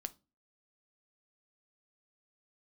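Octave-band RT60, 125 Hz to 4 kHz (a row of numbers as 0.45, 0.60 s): 0.40, 0.45, 0.30, 0.25, 0.20, 0.25 s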